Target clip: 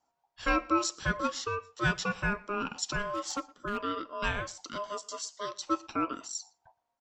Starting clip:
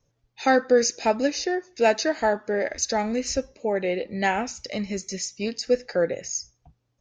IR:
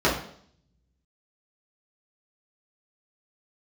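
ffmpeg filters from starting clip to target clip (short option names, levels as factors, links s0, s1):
-filter_complex "[0:a]bandreject=f=450:w=12,aeval=exprs='val(0)*sin(2*PI*820*n/s)':c=same,asettb=1/sr,asplit=3[s0][s1][s2];[s0]atrim=end=3.124[s3];[s1]atrim=start=3.12:end=3.83,asetpts=PTS-STARTPTS,afade=t=in:d=0.004:c=qsin,afade=t=out:st=0.706:d=0.004:c=qsin,asoftclip=type=hard:threshold=0.0944[s4];[s2]atrim=start=3.826[s5];[s3][s4]acrossfade=d=0.004:c1=hsin:c2=qsin[s6];[s6][s5]acrossfade=d=0.004:c1=qsin:c2=hsin,asplit=2[s7][s8];[s8]adelay=116.6,volume=0.0631,highshelf=f=4000:g=-2.62[s9];[s7][s9]amix=inputs=2:normalize=0,volume=0.562"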